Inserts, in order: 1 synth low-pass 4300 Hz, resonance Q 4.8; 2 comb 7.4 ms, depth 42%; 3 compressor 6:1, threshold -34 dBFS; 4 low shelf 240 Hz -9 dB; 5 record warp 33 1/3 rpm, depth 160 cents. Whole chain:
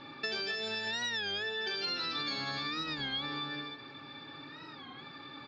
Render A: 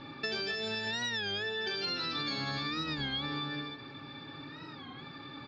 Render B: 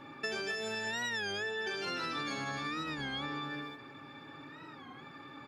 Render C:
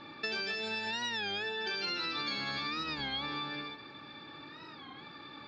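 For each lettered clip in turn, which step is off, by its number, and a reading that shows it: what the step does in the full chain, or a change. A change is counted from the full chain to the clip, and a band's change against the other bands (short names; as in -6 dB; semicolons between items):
4, 125 Hz band +6.0 dB; 1, 4 kHz band -8.0 dB; 2, 1 kHz band +2.0 dB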